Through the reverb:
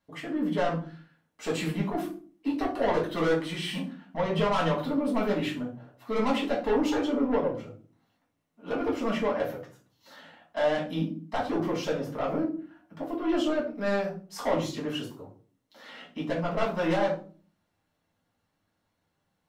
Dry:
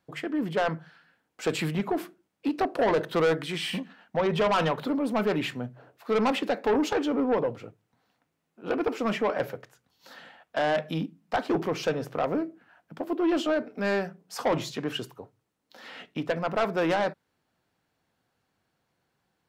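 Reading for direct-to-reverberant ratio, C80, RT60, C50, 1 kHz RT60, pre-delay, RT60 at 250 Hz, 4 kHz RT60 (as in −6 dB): −4.5 dB, 13.5 dB, 0.40 s, 8.5 dB, 0.35 s, 3 ms, 0.60 s, 0.30 s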